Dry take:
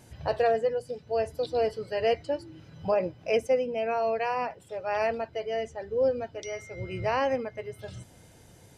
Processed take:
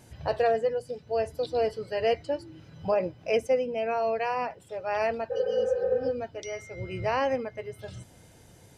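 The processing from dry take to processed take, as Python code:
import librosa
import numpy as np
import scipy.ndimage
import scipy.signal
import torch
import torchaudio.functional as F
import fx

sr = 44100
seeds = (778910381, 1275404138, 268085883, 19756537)

y = fx.spec_repair(x, sr, seeds[0], start_s=5.33, length_s=0.74, low_hz=460.0, high_hz=2900.0, source='after')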